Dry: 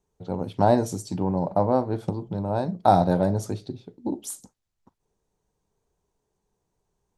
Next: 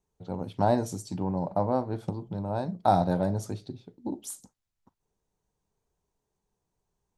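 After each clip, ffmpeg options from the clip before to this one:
ffmpeg -i in.wav -af "equalizer=frequency=420:width=1.5:gain=-2.5,volume=-4dB" out.wav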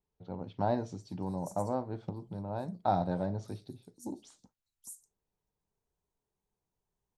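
ffmpeg -i in.wav -filter_complex "[0:a]acrossover=split=5700[link_01][link_02];[link_02]adelay=600[link_03];[link_01][link_03]amix=inputs=2:normalize=0,volume=-6.5dB" out.wav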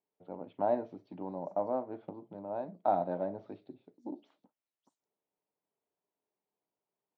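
ffmpeg -i in.wav -af "highpass=270,equalizer=frequency=290:width_type=q:width=4:gain=5,equalizer=frequency=620:width_type=q:width=4:gain=6,equalizer=frequency=1600:width_type=q:width=4:gain=-3,lowpass=frequency=2800:width=0.5412,lowpass=frequency=2800:width=1.3066,volume=-2dB" out.wav

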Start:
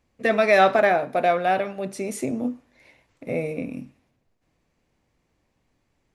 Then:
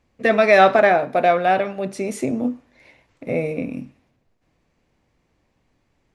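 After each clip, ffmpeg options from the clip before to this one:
ffmpeg -i in.wav -af "highshelf=frequency=10000:gain=-11.5,volume=4dB" out.wav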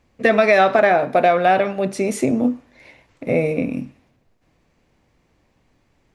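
ffmpeg -i in.wav -af "acompressor=threshold=-15dB:ratio=6,volume=4.5dB" out.wav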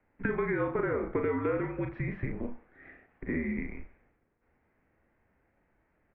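ffmpeg -i in.wav -filter_complex "[0:a]asplit=2[link_01][link_02];[link_02]adelay=37,volume=-5.5dB[link_03];[link_01][link_03]amix=inputs=2:normalize=0,acrossover=split=360|910[link_04][link_05][link_06];[link_04]acompressor=threshold=-35dB:ratio=4[link_07];[link_05]acompressor=threshold=-27dB:ratio=4[link_08];[link_06]acompressor=threshold=-30dB:ratio=4[link_09];[link_07][link_08][link_09]amix=inputs=3:normalize=0,highpass=frequency=250:width_type=q:width=0.5412,highpass=frequency=250:width_type=q:width=1.307,lowpass=frequency=2500:width_type=q:width=0.5176,lowpass=frequency=2500:width_type=q:width=0.7071,lowpass=frequency=2500:width_type=q:width=1.932,afreqshift=-250,volume=-6dB" out.wav

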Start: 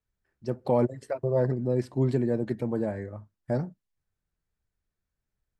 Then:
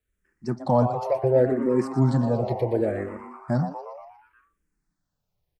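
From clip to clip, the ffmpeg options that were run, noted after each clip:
ffmpeg -i in.wav -filter_complex "[0:a]asplit=2[link_01][link_02];[link_02]asplit=7[link_03][link_04][link_05][link_06][link_07][link_08][link_09];[link_03]adelay=119,afreqshift=140,volume=-11dB[link_10];[link_04]adelay=238,afreqshift=280,volume=-15.3dB[link_11];[link_05]adelay=357,afreqshift=420,volume=-19.6dB[link_12];[link_06]adelay=476,afreqshift=560,volume=-23.9dB[link_13];[link_07]adelay=595,afreqshift=700,volume=-28.2dB[link_14];[link_08]adelay=714,afreqshift=840,volume=-32.5dB[link_15];[link_09]adelay=833,afreqshift=980,volume=-36.8dB[link_16];[link_10][link_11][link_12][link_13][link_14][link_15][link_16]amix=inputs=7:normalize=0[link_17];[link_01][link_17]amix=inputs=2:normalize=0,asplit=2[link_18][link_19];[link_19]afreqshift=-0.69[link_20];[link_18][link_20]amix=inputs=2:normalize=1,volume=7dB" out.wav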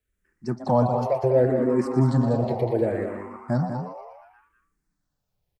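ffmpeg -i in.wav -af "aecho=1:1:195:0.422" out.wav

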